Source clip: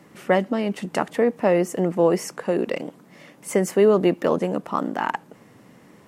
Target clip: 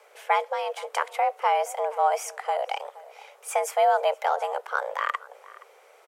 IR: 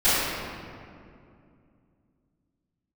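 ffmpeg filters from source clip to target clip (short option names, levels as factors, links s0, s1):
-filter_complex "[0:a]lowshelf=f=280:g=-8,afreqshift=280,asplit=2[s0][s1];[s1]adelay=472.3,volume=0.112,highshelf=f=4000:g=-10.6[s2];[s0][s2]amix=inputs=2:normalize=0,volume=0.794"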